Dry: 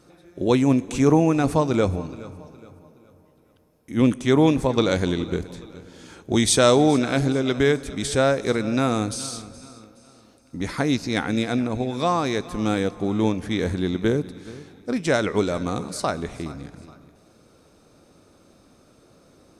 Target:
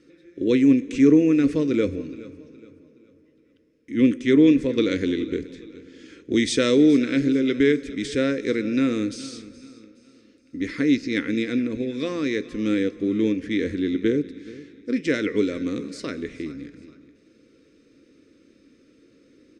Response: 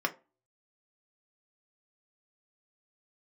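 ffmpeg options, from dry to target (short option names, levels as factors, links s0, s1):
-filter_complex "[0:a]firequalizer=gain_entry='entry(130,0);entry(270,10);entry(520,3);entry(750,-23);entry(1100,-10);entry(1900,8);entry(3700,3);entry(7000,0);entry(12000,-17)':delay=0.05:min_phase=1,asplit=2[s0][s1];[1:a]atrim=start_sample=2205,asetrate=43218,aresample=44100[s2];[s1][s2]afir=irnorm=-1:irlink=0,volume=0.237[s3];[s0][s3]amix=inputs=2:normalize=0,volume=0.355"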